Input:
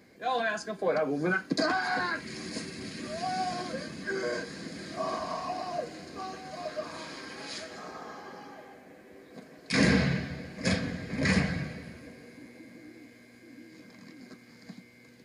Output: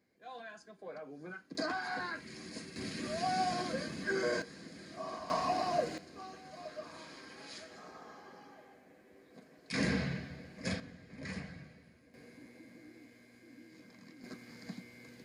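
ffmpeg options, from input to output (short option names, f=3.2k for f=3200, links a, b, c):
-af "asetnsamples=n=441:p=0,asendcmd='1.55 volume volume -8.5dB;2.76 volume volume -1dB;4.42 volume volume -9.5dB;5.3 volume volume 2dB;5.98 volume volume -9dB;10.8 volume volume -17dB;12.14 volume volume -6dB;14.24 volume volume 1dB',volume=-18.5dB"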